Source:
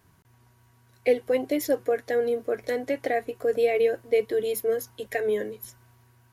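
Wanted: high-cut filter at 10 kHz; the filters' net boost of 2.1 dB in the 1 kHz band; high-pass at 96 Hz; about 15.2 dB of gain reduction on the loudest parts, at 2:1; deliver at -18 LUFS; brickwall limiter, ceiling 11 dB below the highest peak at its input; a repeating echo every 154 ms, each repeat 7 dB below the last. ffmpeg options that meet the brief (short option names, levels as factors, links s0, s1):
-af "highpass=96,lowpass=10000,equalizer=f=1000:t=o:g=4,acompressor=threshold=0.00501:ratio=2,alimiter=level_in=3.35:limit=0.0631:level=0:latency=1,volume=0.299,aecho=1:1:154|308|462|616|770:0.447|0.201|0.0905|0.0407|0.0183,volume=17.8"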